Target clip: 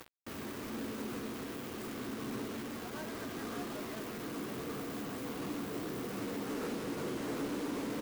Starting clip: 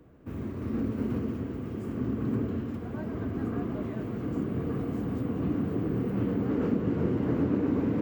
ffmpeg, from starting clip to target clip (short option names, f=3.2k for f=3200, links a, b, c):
-filter_complex "[0:a]highpass=f=930:p=1,areverse,acompressor=mode=upward:threshold=-41dB:ratio=2.5,areverse,asoftclip=type=tanh:threshold=-37dB,acrusher=bits=7:mix=0:aa=0.000001,asplit=2[a][b];[b]adelay=14,volume=-13.5dB[c];[a][c]amix=inputs=2:normalize=0,volume=3dB"